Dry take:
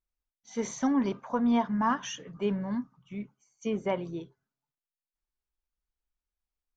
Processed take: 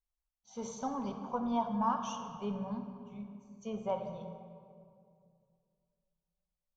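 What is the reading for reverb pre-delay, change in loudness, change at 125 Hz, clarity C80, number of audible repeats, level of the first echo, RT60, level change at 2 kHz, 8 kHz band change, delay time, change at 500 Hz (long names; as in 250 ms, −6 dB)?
3 ms, −7.0 dB, −5.5 dB, 8.0 dB, no echo audible, no echo audible, 2.3 s, −14.0 dB, can't be measured, no echo audible, −6.0 dB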